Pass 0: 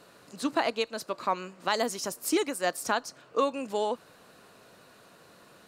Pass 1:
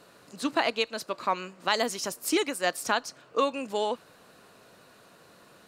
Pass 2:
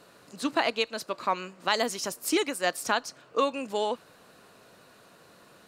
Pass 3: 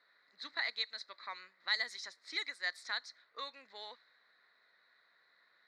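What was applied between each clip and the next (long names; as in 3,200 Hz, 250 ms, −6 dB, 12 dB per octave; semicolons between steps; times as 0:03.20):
dynamic equaliser 2,800 Hz, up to +5 dB, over −43 dBFS, Q 0.81
no processing that can be heard
pair of resonant band-passes 2,800 Hz, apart 1 octave; low-pass that shuts in the quiet parts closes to 2,500 Hz, open at −34.5 dBFS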